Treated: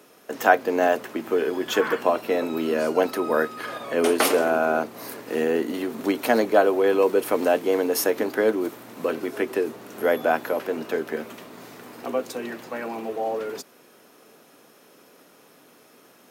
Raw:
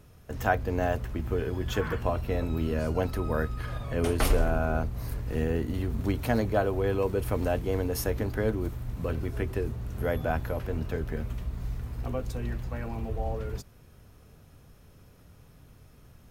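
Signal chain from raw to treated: HPF 270 Hz 24 dB/oct; gain +9 dB

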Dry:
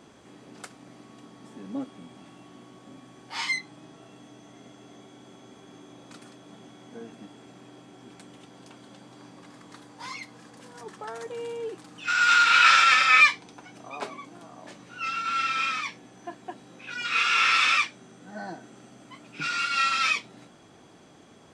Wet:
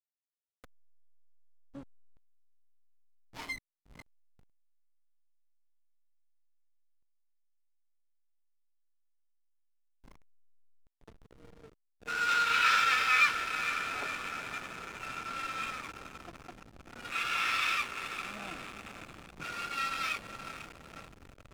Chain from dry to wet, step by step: diffused feedback echo 0.488 s, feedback 72%, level -7.5 dB; backlash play -24 dBFS; gain -8.5 dB

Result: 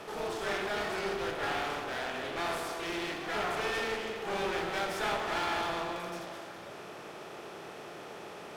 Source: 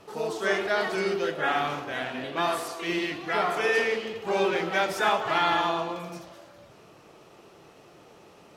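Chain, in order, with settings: per-bin compression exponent 0.6; one-sided clip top -31.5 dBFS; de-hum 64.45 Hz, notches 34; gain -7 dB

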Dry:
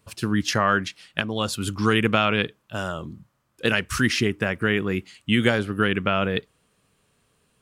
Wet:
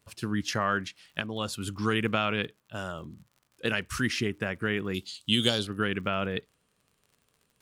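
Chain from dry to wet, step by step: 4.94–5.67 resonant high shelf 2800 Hz +11 dB, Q 3; crackle 53/s -40 dBFS; gain -7 dB

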